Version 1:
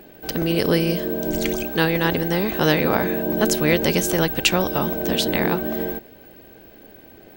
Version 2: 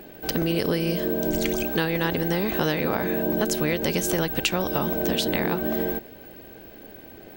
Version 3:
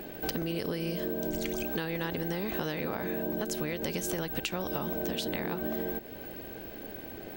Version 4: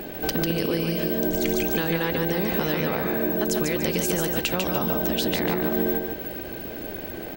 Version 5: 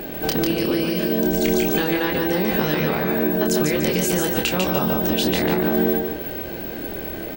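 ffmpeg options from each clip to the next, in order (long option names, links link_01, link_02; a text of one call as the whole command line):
ffmpeg -i in.wav -af "acompressor=threshold=-22dB:ratio=6,volume=1.5dB" out.wav
ffmpeg -i in.wav -af "acompressor=threshold=-32dB:ratio=6,volume=1.5dB" out.wav
ffmpeg -i in.wav -af "aecho=1:1:146|292|438|584:0.631|0.196|0.0606|0.0188,volume=7dB" out.wav
ffmpeg -i in.wav -filter_complex "[0:a]asplit=2[link_01][link_02];[link_02]adelay=27,volume=-4dB[link_03];[link_01][link_03]amix=inputs=2:normalize=0,volume=2.5dB" out.wav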